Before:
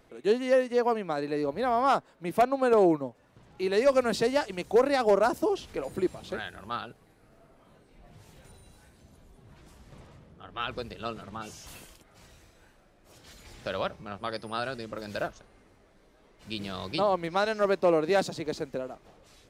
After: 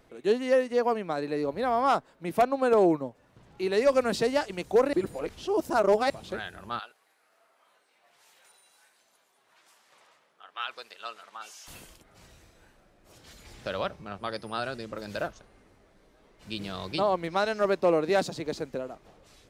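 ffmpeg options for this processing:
ffmpeg -i in.wav -filter_complex "[0:a]asettb=1/sr,asplit=3[link_01][link_02][link_03];[link_01]atrim=end=6.794[link_04];[link_02]atrim=start=6.79:end=11.68,asetpts=PTS-STARTPTS,afade=type=in:duration=0.004:curve=qsin,afade=type=out:start_time=4.886:duration=0.004:curve=qsin,highpass=920[link_05];[link_03]atrim=start=11.676[link_06];[link_04][link_05]acrossfade=duration=0.004:curve1=hsin:curve2=qsin[link_07];[link_07][link_06]acrossfade=duration=0.004:curve1=qsin:curve2=hsin,asplit=3[link_08][link_09][link_10];[link_08]atrim=end=4.932[link_11];[link_09]atrim=start=4.928:end=6.102,asetpts=PTS-STARTPTS,areverse[link_12];[link_10]atrim=start=6.098[link_13];[link_11][link_12]acrossfade=duration=0.004:curve1=hsin:curve2=hsin[link_14];[link_14][link_13]acrossfade=duration=0.004:curve1=hsin:curve2=hsin" out.wav

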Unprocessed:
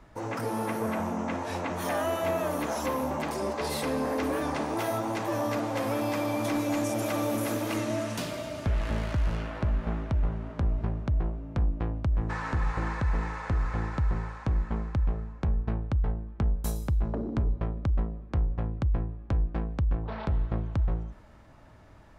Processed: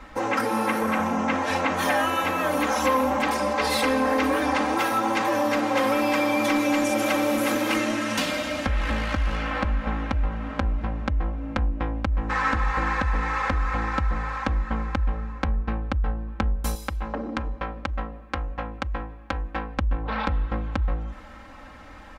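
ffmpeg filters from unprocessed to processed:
ffmpeg -i in.wav -filter_complex "[0:a]asettb=1/sr,asplit=3[link_01][link_02][link_03];[link_01]atrim=end=16.754[link_04];[link_02]atrim=start=16.75:end=19.78,asetpts=PTS-STARTPTS,afade=type=in:duration=0.004:curve=qsin,afade=type=out:start_time=3.026:duration=0.004:curve=qsin,lowshelf=frequency=400:gain=-11.5[link_05];[link_03]atrim=start=19.776[link_06];[link_04][link_05]acrossfade=duration=0.004:curve1=hsin:curve2=qsin[link_07];[link_07][link_06]acrossfade=duration=0.004:curve1=qsin:curve2=hsin,acompressor=threshold=-34dB:ratio=2,equalizer=frequency=2000:width_type=o:width=2.8:gain=8.5,aecho=1:1:3.8:0.96,volume=4.5dB" out.wav

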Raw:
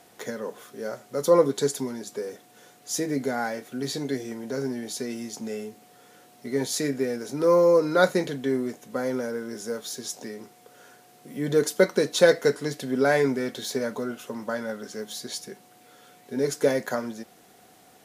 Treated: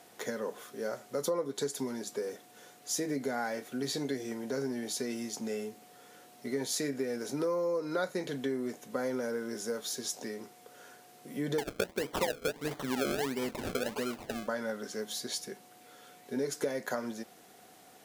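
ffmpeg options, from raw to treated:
ffmpeg -i in.wav -filter_complex "[0:a]asettb=1/sr,asplit=3[link_01][link_02][link_03];[link_01]atrim=end=11.584[link_04];[link_02]atrim=start=11.58:end=14.48,asetpts=PTS-STARTPTS,afade=type=in:duration=0.004:curve=qsin,afade=type=out:start_time=2.896:duration=0.004:curve=qsin,acrusher=samples=32:mix=1:aa=0.000001:lfo=1:lforange=32:lforate=1.5[link_05];[link_03]atrim=start=14.476[link_06];[link_04][link_05]acrossfade=duration=0.004:curve1=hsin:curve2=qsin[link_07];[link_07][link_06]acrossfade=duration=0.004:curve1=qsin:curve2=hsin,lowshelf=frequency=140:gain=-6.5,acompressor=threshold=-28dB:ratio=6,volume=-1.5dB" out.wav

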